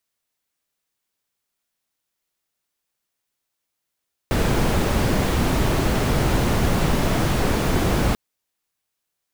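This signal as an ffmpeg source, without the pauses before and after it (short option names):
-f lavfi -i "anoisesrc=c=brown:a=0.525:d=3.84:r=44100:seed=1"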